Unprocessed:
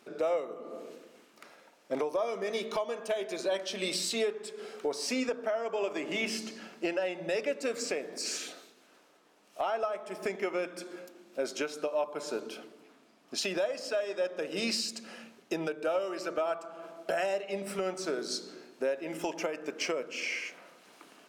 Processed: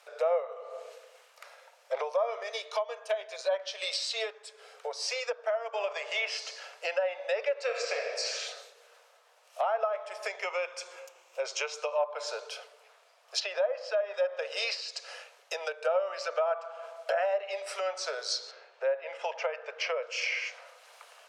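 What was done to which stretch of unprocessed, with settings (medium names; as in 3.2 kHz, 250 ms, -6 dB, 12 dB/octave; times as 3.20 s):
2.43–5.74 s: upward expansion, over -39 dBFS
7.64–8.19 s: reverb throw, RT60 1.6 s, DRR 1 dB
10.43–11.98 s: rippled EQ curve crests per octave 0.73, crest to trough 7 dB
13.40–14.14 s: low-pass 2.1 kHz 6 dB/octave
18.51–20.03 s: low-pass 3.3 kHz
whole clip: steep high-pass 480 Hz 72 dB/octave; low-pass that closes with the level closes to 1.7 kHz, closed at -27.5 dBFS; dynamic bell 5 kHz, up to +5 dB, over -56 dBFS, Q 1.4; trim +3 dB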